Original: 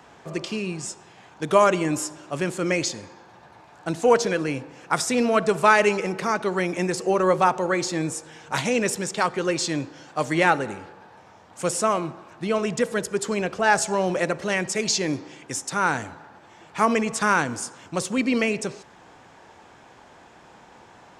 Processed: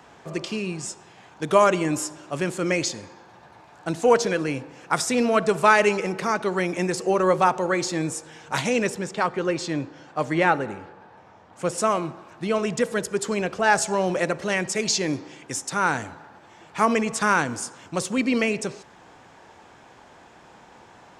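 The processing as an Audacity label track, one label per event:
8.870000	11.780000	treble shelf 4.1 kHz -11 dB

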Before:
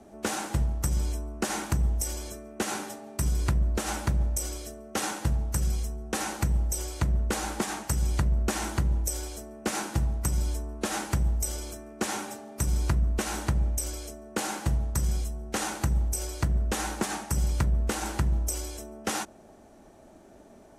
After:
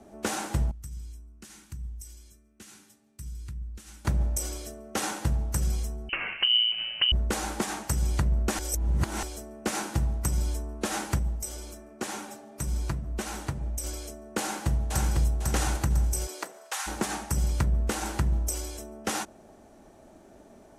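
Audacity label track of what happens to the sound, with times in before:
0.710000	4.050000	amplifier tone stack bass-middle-treble 6-0-2
6.090000	7.120000	frequency inversion carrier 3 kHz
8.590000	9.230000	reverse
11.190000	13.840000	flange 1.9 Hz, delay 3.3 ms, depth 5.2 ms, regen -44%
14.400000	15.260000	echo throw 500 ms, feedback 40%, level -2 dB
16.260000	16.860000	high-pass 240 Hz -> 980 Hz 24 dB/octave

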